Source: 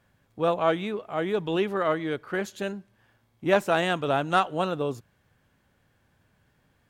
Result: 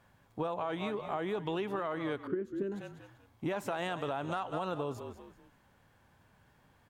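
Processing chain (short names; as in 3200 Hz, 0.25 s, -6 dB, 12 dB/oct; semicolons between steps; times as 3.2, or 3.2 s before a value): bell 930 Hz +6.5 dB 0.76 oct; on a send: frequency-shifting echo 0.194 s, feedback 32%, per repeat -39 Hz, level -16 dB; on the sum: limiter -17 dBFS, peak gain reduction 11 dB; 2.27–2.72 EQ curve 210 Hz 0 dB, 330 Hz +13 dB, 760 Hz -24 dB, 1500 Hz -11 dB, 4000 Hz -22 dB; compressor 6:1, threshold -32 dBFS, peak gain reduction 12 dB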